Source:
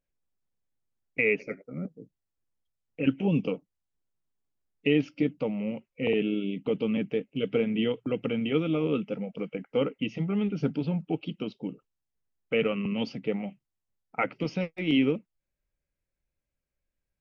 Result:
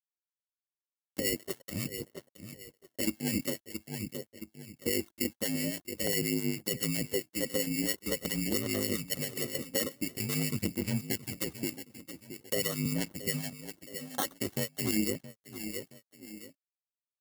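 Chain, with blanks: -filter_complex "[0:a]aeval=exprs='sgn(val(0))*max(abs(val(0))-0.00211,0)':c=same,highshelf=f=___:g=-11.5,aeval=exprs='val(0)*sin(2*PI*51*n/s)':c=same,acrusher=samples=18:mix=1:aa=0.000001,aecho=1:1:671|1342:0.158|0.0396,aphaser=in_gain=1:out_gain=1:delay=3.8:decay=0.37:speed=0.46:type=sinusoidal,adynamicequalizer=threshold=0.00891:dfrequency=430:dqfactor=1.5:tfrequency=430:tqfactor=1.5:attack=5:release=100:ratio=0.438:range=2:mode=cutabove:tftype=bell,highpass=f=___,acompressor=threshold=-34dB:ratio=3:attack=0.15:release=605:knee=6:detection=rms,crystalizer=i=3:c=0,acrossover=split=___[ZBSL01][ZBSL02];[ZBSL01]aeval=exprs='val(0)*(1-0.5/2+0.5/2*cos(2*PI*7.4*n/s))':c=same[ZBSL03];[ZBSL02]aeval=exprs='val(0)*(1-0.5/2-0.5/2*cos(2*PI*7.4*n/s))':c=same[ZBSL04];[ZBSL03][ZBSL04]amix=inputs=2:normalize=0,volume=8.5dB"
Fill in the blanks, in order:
2600, 77, 1200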